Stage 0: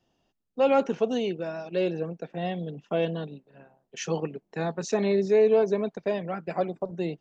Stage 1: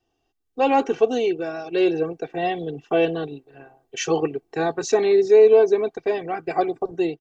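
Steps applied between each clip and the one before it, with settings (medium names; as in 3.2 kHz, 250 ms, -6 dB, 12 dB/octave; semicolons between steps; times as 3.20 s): comb 2.6 ms, depth 81%; level rider gain up to 10 dB; trim -4 dB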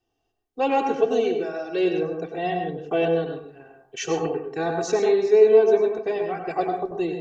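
plate-style reverb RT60 0.55 s, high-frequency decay 0.45×, pre-delay 85 ms, DRR 3.5 dB; trim -3.5 dB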